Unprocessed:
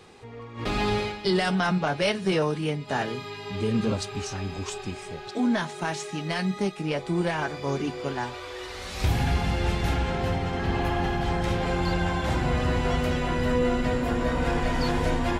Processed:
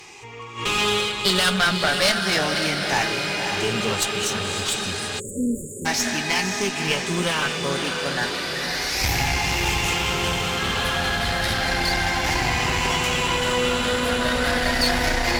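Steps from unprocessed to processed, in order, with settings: drifting ripple filter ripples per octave 0.72, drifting +0.32 Hz, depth 10 dB; tilt shelf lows -8 dB, about 1.2 kHz; echo that smears into a reverb 550 ms, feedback 67%, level -7 dB; one-sided clip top -28.5 dBFS; spectral selection erased 5.20–5.86 s, 600–6700 Hz; trim +6 dB

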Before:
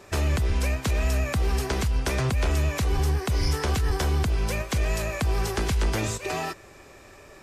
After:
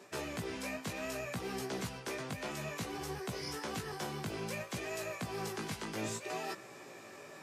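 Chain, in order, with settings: high-pass 140 Hz 24 dB/octave; reverse; compression, threshold -35 dBFS, peak gain reduction 11 dB; reverse; chorus 0.61 Hz, delay 15.5 ms, depth 3.9 ms; trim +1 dB

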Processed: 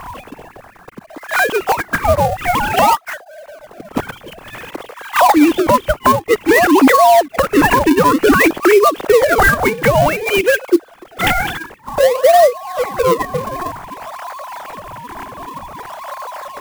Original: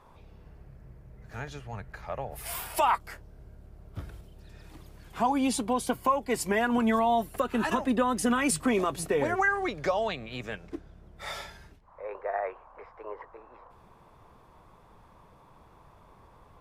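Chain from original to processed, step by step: formants replaced by sine waves; in parallel at -6 dB: decimation with a swept rate 38×, swing 160% 0.54 Hz; on the sum: compression 2.5:1, threshold -46 dBFS, peak gain reduction 23.5 dB; loudness maximiser +34.5 dB; sampling jitter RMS 0.021 ms; trim -1 dB

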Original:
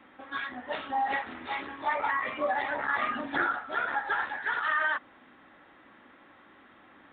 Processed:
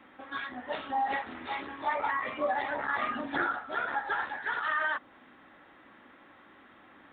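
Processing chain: dynamic bell 2 kHz, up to -3 dB, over -40 dBFS, Q 0.77

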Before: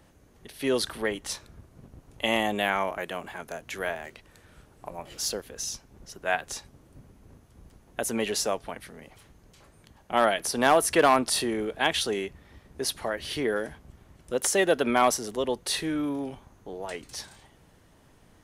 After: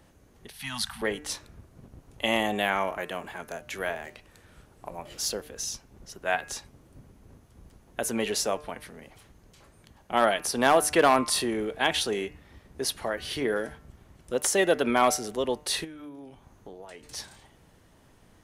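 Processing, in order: 0.50–1.02 s: elliptic band-stop 220–780 Hz, stop band 40 dB; de-hum 150 Hz, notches 19; 15.84–17.04 s: compression 8:1, threshold -41 dBFS, peak gain reduction 15 dB

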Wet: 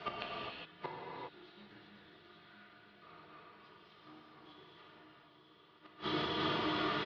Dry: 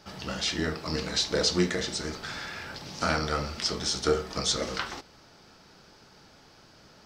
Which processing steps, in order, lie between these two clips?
high-pass 230 Hz 12 dB/octave; comb 3.7 ms, depth 99%; in parallel at -2.5 dB: compression 6:1, threshold -33 dBFS, peak gain reduction 14 dB; on the sum: added noise violet -40 dBFS; on a send: echo that smears into a reverb 912 ms, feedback 52%, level -7 dB; on the sum: valve stage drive 22 dB, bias 0.75; inverted gate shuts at -24 dBFS, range -36 dB; gated-style reverb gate 440 ms flat, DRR -4.5 dB; mistuned SSB -150 Hz 320–3600 Hz; trim +5 dB

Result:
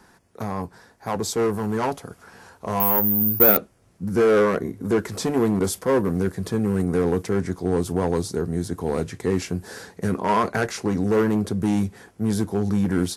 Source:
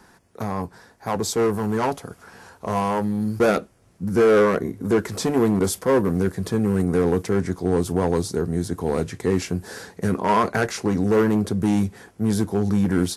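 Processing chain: 2.80–3.57 s: careless resampling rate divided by 3×, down filtered, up zero stuff; trim -1.5 dB

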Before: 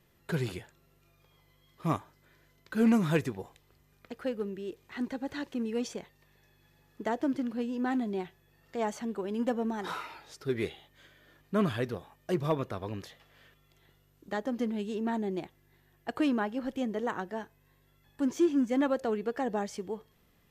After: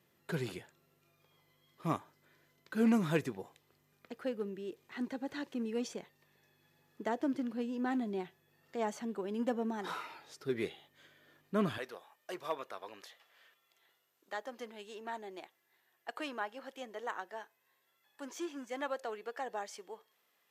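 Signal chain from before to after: high-pass 150 Hz 12 dB/octave, from 11.78 s 650 Hz; trim -3.5 dB

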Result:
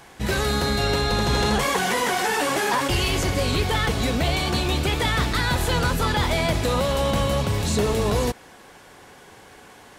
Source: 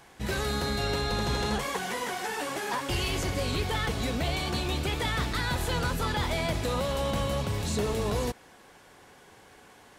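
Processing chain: 1.33–2.88 s: level flattener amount 50%; trim +7 dB

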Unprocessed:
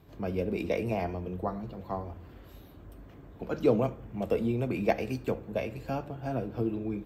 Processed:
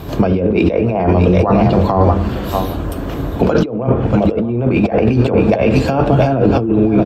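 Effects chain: peaking EQ 2 kHz -5 dB 0.48 oct; hum notches 50/100/150/200/250/300/350/400/450 Hz; delay 633 ms -13.5 dB; low-pass that closes with the level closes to 1.8 kHz, closed at -26 dBFS; compressor with a negative ratio -38 dBFS, ratio -1; loudness maximiser +26 dB; trim -1 dB

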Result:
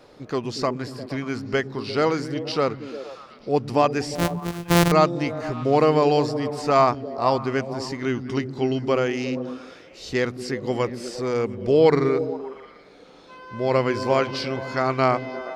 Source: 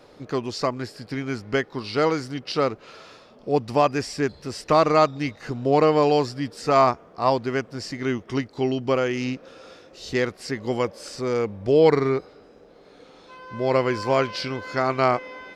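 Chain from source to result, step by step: 4.15–4.92 s: sorted samples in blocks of 256 samples; repeats whose band climbs or falls 117 ms, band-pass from 160 Hz, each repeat 0.7 oct, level -4.5 dB

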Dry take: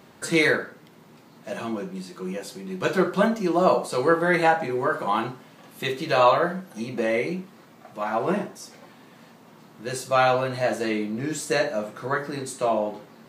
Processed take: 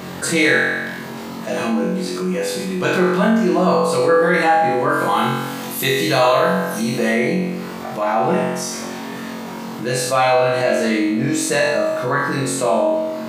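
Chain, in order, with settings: 4.89–7.11 s: treble shelf 5.6 kHz +11.5 dB; flutter echo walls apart 3.8 m, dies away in 0.72 s; level flattener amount 50%; trim -2 dB

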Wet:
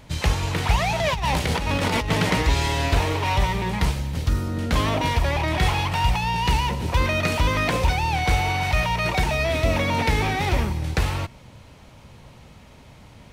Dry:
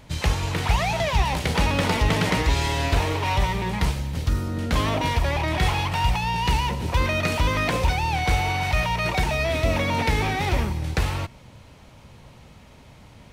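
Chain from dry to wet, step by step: 1.00–2.11 s: compressor with a negative ratio -24 dBFS, ratio -1; trim +1 dB

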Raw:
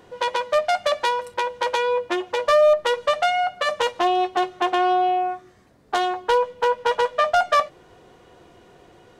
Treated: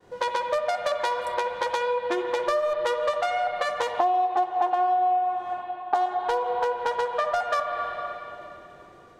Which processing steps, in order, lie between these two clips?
expander -46 dBFS; 3.90–6.06 s: peaking EQ 790 Hz +15 dB 1 oct; reverberation RT60 2.9 s, pre-delay 66 ms, DRR 6.5 dB; compression 6:1, threshold -22 dBFS, peak gain reduction 16.5 dB; peaking EQ 2.9 kHz -5 dB 0.59 oct

